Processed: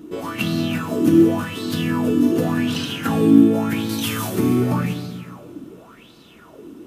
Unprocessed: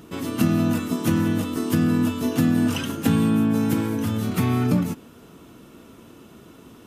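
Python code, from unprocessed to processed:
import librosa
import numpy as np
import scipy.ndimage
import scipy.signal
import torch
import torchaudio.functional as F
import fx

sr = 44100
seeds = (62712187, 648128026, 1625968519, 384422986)

y = fx.peak_eq(x, sr, hz=12000.0, db=15.0, octaves=2.8, at=(3.89, 4.3))
y = fx.rev_plate(y, sr, seeds[0], rt60_s=2.0, hf_ratio=0.9, predelay_ms=0, drr_db=1.0)
y = fx.bell_lfo(y, sr, hz=0.89, low_hz=290.0, high_hz=4300.0, db=17)
y = y * 10.0 ** (-5.0 / 20.0)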